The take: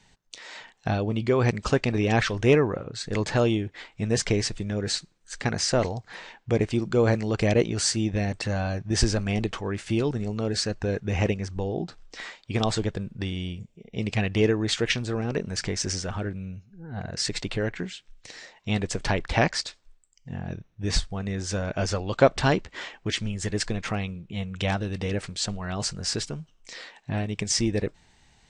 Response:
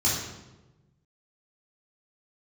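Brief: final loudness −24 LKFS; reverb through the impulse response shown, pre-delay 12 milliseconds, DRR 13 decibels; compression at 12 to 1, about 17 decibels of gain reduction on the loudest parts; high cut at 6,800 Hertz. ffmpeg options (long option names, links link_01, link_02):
-filter_complex "[0:a]lowpass=6800,acompressor=threshold=-30dB:ratio=12,asplit=2[link_01][link_02];[1:a]atrim=start_sample=2205,adelay=12[link_03];[link_02][link_03]afir=irnorm=-1:irlink=0,volume=-24.5dB[link_04];[link_01][link_04]amix=inputs=2:normalize=0,volume=11dB"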